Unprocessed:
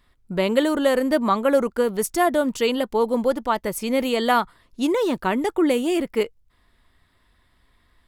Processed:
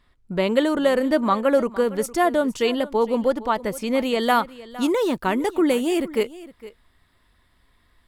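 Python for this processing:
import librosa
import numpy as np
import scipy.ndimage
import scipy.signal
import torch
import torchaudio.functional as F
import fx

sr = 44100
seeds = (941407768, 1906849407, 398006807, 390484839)

y = fx.high_shelf(x, sr, hz=9300.0, db=fx.steps((0.0, -9.5), (4.23, 2.5)))
y = y + 10.0 ** (-18.0 / 20.0) * np.pad(y, (int(460 * sr / 1000.0), 0))[:len(y)]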